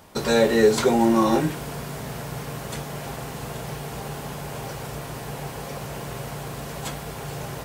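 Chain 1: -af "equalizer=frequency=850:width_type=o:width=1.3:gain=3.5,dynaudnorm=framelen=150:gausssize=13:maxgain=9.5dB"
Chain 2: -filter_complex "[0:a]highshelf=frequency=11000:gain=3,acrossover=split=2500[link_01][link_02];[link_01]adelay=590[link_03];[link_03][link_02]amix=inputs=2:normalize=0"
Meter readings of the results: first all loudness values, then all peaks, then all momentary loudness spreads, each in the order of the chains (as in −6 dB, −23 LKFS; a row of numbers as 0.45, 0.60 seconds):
−21.0, −26.0 LKFS; −2.0, −6.5 dBFS; 12, 15 LU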